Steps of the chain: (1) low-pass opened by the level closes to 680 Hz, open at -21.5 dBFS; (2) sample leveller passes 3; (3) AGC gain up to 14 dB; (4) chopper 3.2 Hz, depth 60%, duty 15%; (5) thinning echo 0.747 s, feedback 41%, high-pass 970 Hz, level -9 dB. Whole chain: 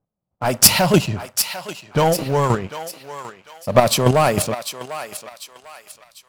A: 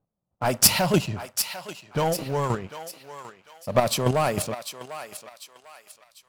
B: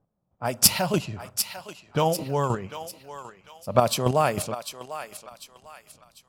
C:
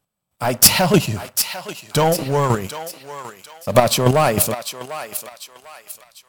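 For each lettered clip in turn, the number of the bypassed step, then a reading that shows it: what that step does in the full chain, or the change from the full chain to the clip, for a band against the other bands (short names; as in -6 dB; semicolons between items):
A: 3, momentary loudness spread change +1 LU; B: 2, crest factor change +7.0 dB; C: 1, momentary loudness spread change +2 LU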